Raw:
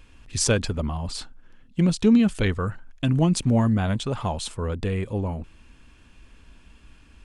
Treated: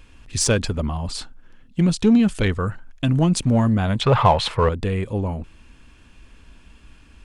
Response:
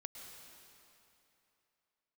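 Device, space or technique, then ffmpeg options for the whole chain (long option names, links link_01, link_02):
parallel distortion: -filter_complex "[0:a]asettb=1/sr,asplit=3[link_01][link_02][link_03];[link_01]atrim=end=4.014[link_04];[link_02]atrim=start=4.01:end=4.69,asetpts=PTS-STARTPTS,afade=type=in:duration=0.004:curve=qsin,afade=type=out:start_time=0.676:duration=0.004:curve=qsin,equalizer=frequency=125:width_type=o:width=1:gain=11,equalizer=frequency=250:width_type=o:width=1:gain=-5,equalizer=frequency=500:width_type=o:width=1:gain=10,equalizer=frequency=1000:width_type=o:width=1:gain=10,equalizer=frequency=2000:width_type=o:width=1:gain=12,equalizer=frequency=4000:width_type=o:width=1:gain=6,equalizer=frequency=8000:width_type=o:width=1:gain=-9[link_05];[link_03]atrim=start=4.686[link_06];[link_04][link_05]acrossfade=duration=0.004:curve1=hsin:curve2=qsin[link_07];[link_07][link_06]acrossfade=duration=0.004:curve1=qsin:curve2=hsin,asplit=2[link_08][link_09];[link_09]asoftclip=type=hard:threshold=-18.5dB,volume=-8dB[link_10];[link_08][link_10]amix=inputs=2:normalize=0"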